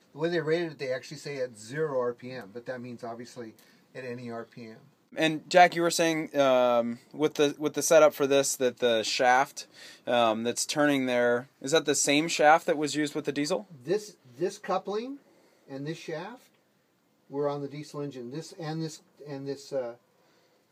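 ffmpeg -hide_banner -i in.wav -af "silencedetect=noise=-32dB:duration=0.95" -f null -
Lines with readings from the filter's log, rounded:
silence_start: 16.28
silence_end: 17.35 | silence_duration: 1.07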